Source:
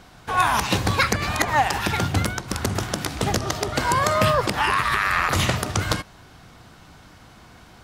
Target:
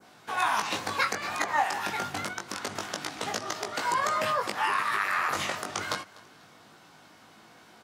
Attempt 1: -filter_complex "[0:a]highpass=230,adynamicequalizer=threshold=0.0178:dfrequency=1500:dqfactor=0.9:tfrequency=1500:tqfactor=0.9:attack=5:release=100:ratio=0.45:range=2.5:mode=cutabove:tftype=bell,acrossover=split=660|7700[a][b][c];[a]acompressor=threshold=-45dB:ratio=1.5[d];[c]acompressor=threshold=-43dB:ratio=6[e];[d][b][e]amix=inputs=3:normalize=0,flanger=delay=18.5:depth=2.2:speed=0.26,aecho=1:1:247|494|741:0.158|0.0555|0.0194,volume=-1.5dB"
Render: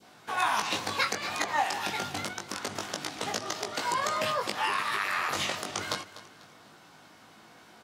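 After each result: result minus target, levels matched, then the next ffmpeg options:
echo-to-direct +6.5 dB; 4000 Hz band +3.0 dB
-filter_complex "[0:a]highpass=230,adynamicequalizer=threshold=0.0178:dfrequency=1500:dqfactor=0.9:tfrequency=1500:tqfactor=0.9:attack=5:release=100:ratio=0.45:range=2.5:mode=cutabove:tftype=bell,acrossover=split=660|7700[a][b][c];[a]acompressor=threshold=-45dB:ratio=1.5[d];[c]acompressor=threshold=-43dB:ratio=6[e];[d][b][e]amix=inputs=3:normalize=0,flanger=delay=18.5:depth=2.2:speed=0.26,aecho=1:1:247|494:0.075|0.0262,volume=-1.5dB"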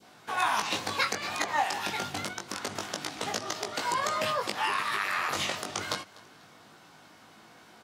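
4000 Hz band +3.0 dB
-filter_complex "[0:a]highpass=230,adynamicequalizer=threshold=0.0178:dfrequency=3400:dqfactor=0.9:tfrequency=3400:tqfactor=0.9:attack=5:release=100:ratio=0.45:range=2.5:mode=cutabove:tftype=bell,acrossover=split=660|7700[a][b][c];[a]acompressor=threshold=-45dB:ratio=1.5[d];[c]acompressor=threshold=-43dB:ratio=6[e];[d][b][e]amix=inputs=3:normalize=0,flanger=delay=18.5:depth=2.2:speed=0.26,aecho=1:1:247|494:0.075|0.0262,volume=-1.5dB"

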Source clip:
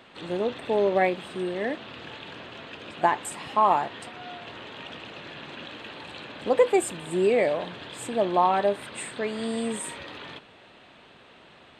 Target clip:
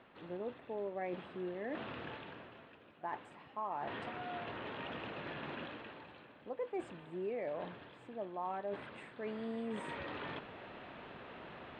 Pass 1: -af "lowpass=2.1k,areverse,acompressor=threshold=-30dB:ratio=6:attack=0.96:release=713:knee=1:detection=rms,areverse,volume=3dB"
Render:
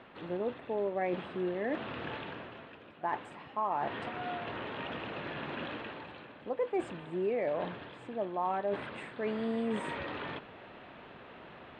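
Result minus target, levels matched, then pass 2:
compressor: peak gain reduction -7.5 dB
-af "lowpass=2.1k,areverse,acompressor=threshold=-39dB:ratio=6:attack=0.96:release=713:knee=1:detection=rms,areverse,volume=3dB"

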